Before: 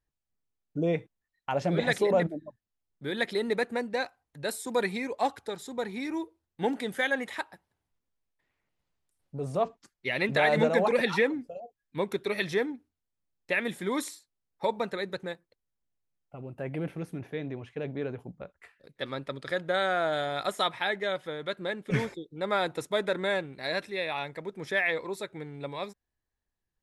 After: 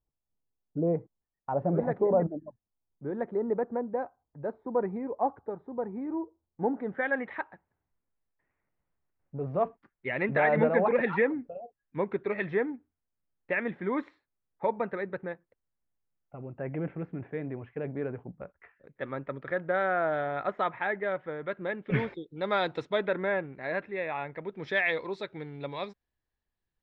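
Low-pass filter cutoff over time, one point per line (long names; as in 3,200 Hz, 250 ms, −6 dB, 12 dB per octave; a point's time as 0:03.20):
low-pass filter 24 dB per octave
0:06.66 1,100 Hz
0:07.16 2,100 Hz
0:21.38 2,100 Hz
0:22.71 4,800 Hz
0:23.27 2,200 Hz
0:24.24 2,200 Hz
0:24.70 4,500 Hz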